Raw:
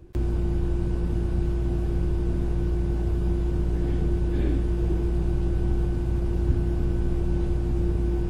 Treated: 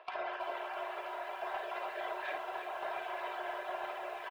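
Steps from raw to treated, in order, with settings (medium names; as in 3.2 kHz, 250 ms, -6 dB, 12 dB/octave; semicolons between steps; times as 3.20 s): random holes in the spectrogram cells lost 22%; low-pass 2.8 kHz 24 dB/octave; reverb removal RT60 1.5 s; steep high-pass 550 Hz 48 dB/octave; comb 3.1 ms, depth 72%; granular stretch 0.54×, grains 148 ms; tremolo saw down 0.68 Hz, depth 45%; saturation -40 dBFS, distortion -23 dB; early reflections 40 ms -11 dB, 54 ms -8.5 dB; speed mistake 24 fps film run at 25 fps; bit-crushed delay 327 ms, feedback 80%, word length 12-bit, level -9 dB; trim +12 dB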